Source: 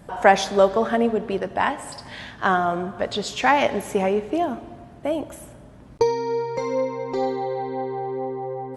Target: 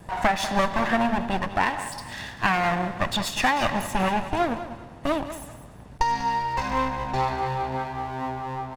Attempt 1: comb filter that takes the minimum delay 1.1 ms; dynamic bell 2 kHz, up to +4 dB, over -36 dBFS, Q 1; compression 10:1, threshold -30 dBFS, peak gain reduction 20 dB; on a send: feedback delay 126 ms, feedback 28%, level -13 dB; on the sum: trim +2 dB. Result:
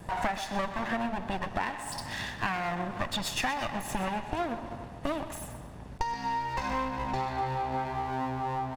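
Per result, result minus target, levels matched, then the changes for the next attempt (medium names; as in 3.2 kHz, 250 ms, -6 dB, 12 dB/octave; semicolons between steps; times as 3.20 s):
compression: peak gain reduction +9.5 dB; echo 67 ms early
change: compression 10:1, threshold -19.5 dBFS, peak gain reduction 10.5 dB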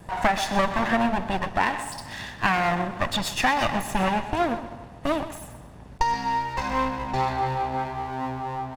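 echo 67 ms early
change: feedback delay 193 ms, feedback 28%, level -13 dB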